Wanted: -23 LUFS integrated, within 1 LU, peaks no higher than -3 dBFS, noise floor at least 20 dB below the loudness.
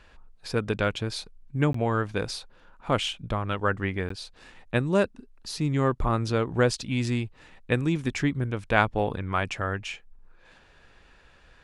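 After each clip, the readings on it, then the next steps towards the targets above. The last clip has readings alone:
dropouts 2; longest dropout 14 ms; loudness -27.5 LUFS; peak level -5.5 dBFS; loudness target -23.0 LUFS
-> interpolate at 1.73/4.09 s, 14 ms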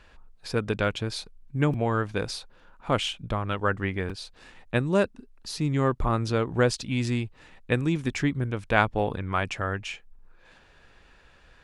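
dropouts 0; loudness -27.5 LUFS; peak level -5.5 dBFS; loudness target -23.0 LUFS
-> trim +4.5 dB; peak limiter -3 dBFS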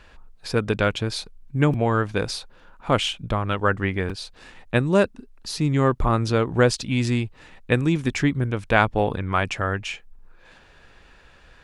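loudness -23.5 LUFS; peak level -3.0 dBFS; noise floor -52 dBFS

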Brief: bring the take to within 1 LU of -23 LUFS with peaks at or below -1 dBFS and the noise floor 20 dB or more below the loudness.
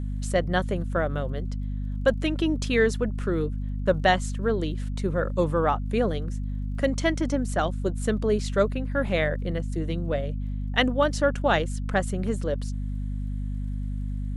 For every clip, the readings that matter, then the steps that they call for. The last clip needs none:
tick rate 35 per s; hum 50 Hz; highest harmonic 250 Hz; hum level -27 dBFS; loudness -26.5 LUFS; peak level -7.0 dBFS; loudness target -23.0 LUFS
-> de-click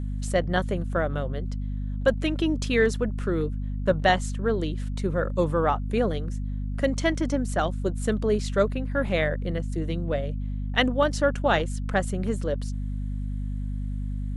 tick rate 0.14 per s; hum 50 Hz; highest harmonic 250 Hz; hum level -27 dBFS
-> hum notches 50/100/150/200/250 Hz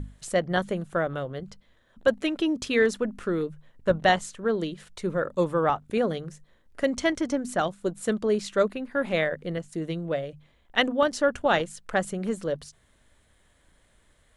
hum not found; loudness -27.0 LUFS; peak level -7.0 dBFS; loudness target -23.0 LUFS
-> trim +4 dB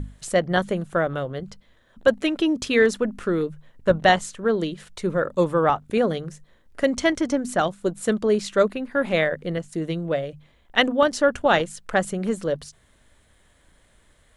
loudness -23.0 LUFS; peak level -3.0 dBFS; noise floor -59 dBFS

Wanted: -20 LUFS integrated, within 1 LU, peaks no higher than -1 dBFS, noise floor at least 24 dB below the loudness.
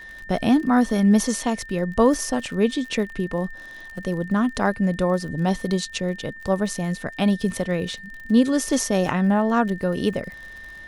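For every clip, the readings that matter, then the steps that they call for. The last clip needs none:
tick rate 46 per s; steady tone 1.8 kHz; tone level -38 dBFS; loudness -22.5 LUFS; peak level -6.0 dBFS; loudness target -20.0 LUFS
-> de-click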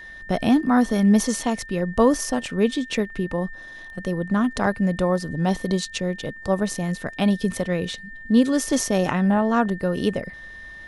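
tick rate 0.28 per s; steady tone 1.8 kHz; tone level -38 dBFS
-> band-stop 1.8 kHz, Q 30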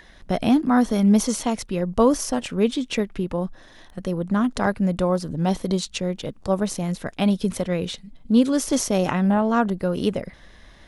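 steady tone not found; loudness -22.5 LUFS; peak level -6.0 dBFS; loudness target -20.0 LUFS
-> trim +2.5 dB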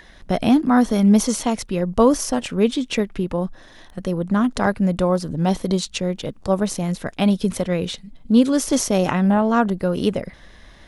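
loudness -20.0 LUFS; peak level -3.5 dBFS; noise floor -47 dBFS

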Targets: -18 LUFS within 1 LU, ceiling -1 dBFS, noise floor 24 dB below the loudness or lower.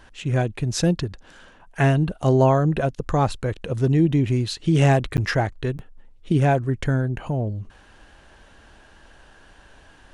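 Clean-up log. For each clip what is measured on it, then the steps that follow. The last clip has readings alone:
dropouts 2; longest dropout 9.6 ms; loudness -22.0 LUFS; peak level -5.5 dBFS; loudness target -18.0 LUFS
-> interpolate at 5.17/5.78 s, 9.6 ms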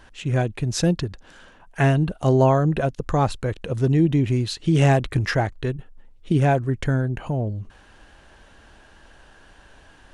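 dropouts 0; loudness -22.0 LUFS; peak level -5.5 dBFS; loudness target -18.0 LUFS
-> trim +4 dB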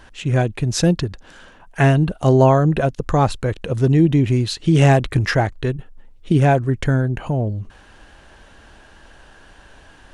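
loudness -18.0 LUFS; peak level -1.5 dBFS; noise floor -47 dBFS

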